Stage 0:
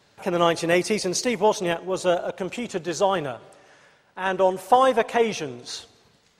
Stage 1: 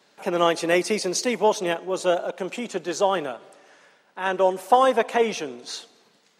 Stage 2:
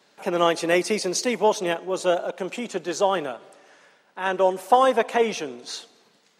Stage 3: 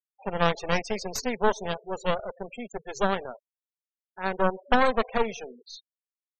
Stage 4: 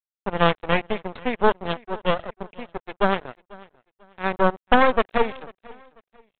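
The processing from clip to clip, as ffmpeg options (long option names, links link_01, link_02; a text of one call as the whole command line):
ffmpeg -i in.wav -af "highpass=frequency=190:width=0.5412,highpass=frequency=190:width=1.3066" out.wav
ffmpeg -i in.wav -af anull out.wav
ffmpeg -i in.wav -af "aeval=exprs='0.596*(cos(1*acos(clip(val(0)/0.596,-1,1)))-cos(1*PI/2))+0.266*(cos(4*acos(clip(val(0)/0.596,-1,1)))-cos(4*PI/2))':channel_layout=same,superequalizer=6b=0.316:16b=0.447,afftfilt=real='re*gte(hypot(re,im),0.0398)':imag='im*gte(hypot(re,im),0.0398)':win_size=1024:overlap=0.75,volume=-7dB" out.wav
ffmpeg -i in.wav -af "aresample=8000,aeval=exprs='sgn(val(0))*max(abs(val(0))-0.0126,0)':channel_layout=same,aresample=44100,aecho=1:1:493|986:0.0708|0.0219,volume=5.5dB" out.wav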